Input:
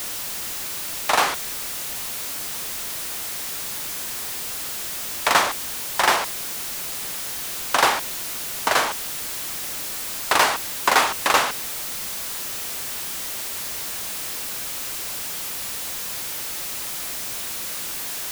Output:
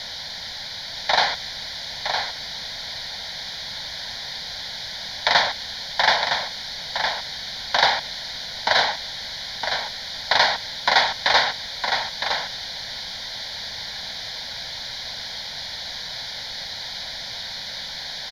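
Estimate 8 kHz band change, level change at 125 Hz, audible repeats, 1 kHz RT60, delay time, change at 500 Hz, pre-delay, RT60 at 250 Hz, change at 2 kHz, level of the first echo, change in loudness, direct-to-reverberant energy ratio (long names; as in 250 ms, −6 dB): −12.0 dB, +0.5 dB, 1, no reverb audible, 962 ms, −0.5 dB, no reverb audible, no reverb audible, +1.5 dB, −6.0 dB, −0.5 dB, no reverb audible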